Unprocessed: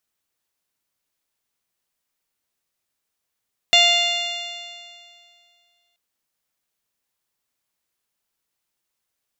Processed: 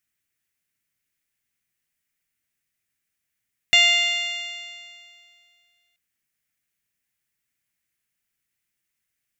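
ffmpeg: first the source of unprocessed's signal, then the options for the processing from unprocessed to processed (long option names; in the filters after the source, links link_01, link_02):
-f lavfi -i "aevalsrc='0.112*pow(10,-3*t/2.25)*sin(2*PI*693.45*t)+0.0188*pow(10,-3*t/2.25)*sin(2*PI*1389.6*t)+0.1*pow(10,-3*t/2.25)*sin(2*PI*2091.13*t)+0.2*pow(10,-3*t/2.25)*sin(2*PI*2800.68*t)+0.2*pow(10,-3*t/2.25)*sin(2*PI*3520.86*t)+0.0891*pow(10,-3*t/2.25)*sin(2*PI*4254.18*t)+0.0224*pow(10,-3*t/2.25)*sin(2*PI*5003.12*t)+0.0376*pow(10,-3*t/2.25)*sin(2*PI*5770.02*t)+0.0251*pow(10,-3*t/2.25)*sin(2*PI*6557.16*t)+0.0355*pow(10,-3*t/2.25)*sin(2*PI*7366.69*t)':duration=2.23:sample_rate=44100"
-af "equalizer=frequency=125:width_type=o:width=1:gain=4,equalizer=frequency=500:width_type=o:width=1:gain=-7,equalizer=frequency=1000:width_type=o:width=1:gain=-11,equalizer=frequency=2000:width_type=o:width=1:gain=8,equalizer=frequency=4000:width_type=o:width=1:gain=-6"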